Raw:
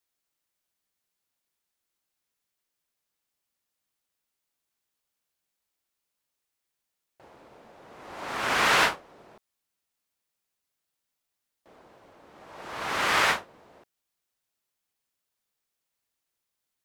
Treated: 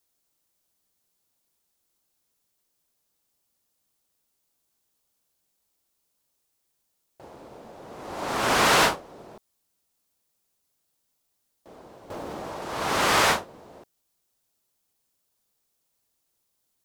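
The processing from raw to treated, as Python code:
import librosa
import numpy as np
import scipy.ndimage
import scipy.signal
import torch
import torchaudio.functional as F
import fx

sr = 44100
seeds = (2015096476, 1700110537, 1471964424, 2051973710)

y = fx.peak_eq(x, sr, hz=2000.0, db=-8.0, octaves=1.9)
y = 10.0 ** (-21.0 / 20.0) * np.tanh(y / 10.0 ** (-21.0 / 20.0))
y = fx.env_flatten(y, sr, amount_pct=100, at=(12.1, 12.64))
y = y * librosa.db_to_amplitude(9.0)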